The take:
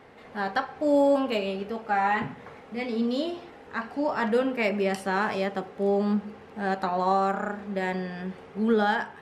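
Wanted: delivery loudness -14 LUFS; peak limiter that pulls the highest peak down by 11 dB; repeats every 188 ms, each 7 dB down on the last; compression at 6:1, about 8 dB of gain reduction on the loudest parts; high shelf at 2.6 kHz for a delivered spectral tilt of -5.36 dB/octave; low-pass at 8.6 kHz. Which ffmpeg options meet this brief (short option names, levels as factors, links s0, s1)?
-af "lowpass=8600,highshelf=f=2600:g=-7.5,acompressor=threshold=0.0501:ratio=6,alimiter=level_in=1.5:limit=0.0631:level=0:latency=1,volume=0.668,aecho=1:1:188|376|564|752|940:0.447|0.201|0.0905|0.0407|0.0183,volume=11.9"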